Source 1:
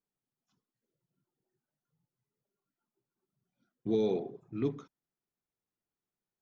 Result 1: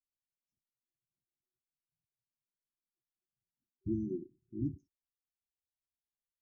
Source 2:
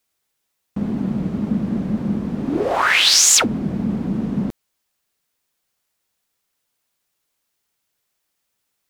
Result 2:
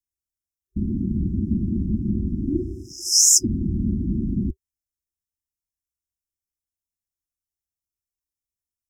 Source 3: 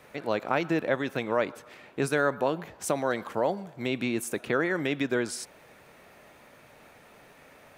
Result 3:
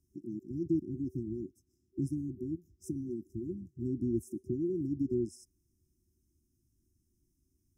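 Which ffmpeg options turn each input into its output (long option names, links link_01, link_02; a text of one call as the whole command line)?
ffmpeg -i in.wav -af "equalizer=frequency=540:width_type=o:width=0.5:gain=5.5,afwtdn=0.0501,lowshelf=frequency=110:width_type=q:width=1.5:gain=11.5,afftfilt=real='re*(1-between(b*sr/4096,380,5000))':imag='im*(1-between(b*sr/4096,380,5000))':win_size=4096:overlap=0.75,volume=-1dB" out.wav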